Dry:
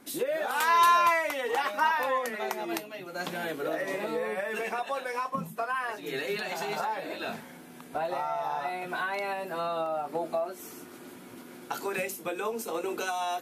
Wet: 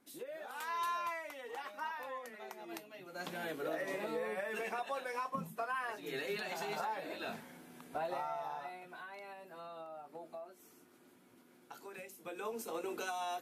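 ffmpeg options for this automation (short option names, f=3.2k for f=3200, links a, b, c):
-af "volume=2.5dB,afade=t=in:st=2.56:d=0.97:silence=0.354813,afade=t=out:st=8.15:d=0.75:silence=0.298538,afade=t=in:st=12.11:d=0.43:silence=0.334965"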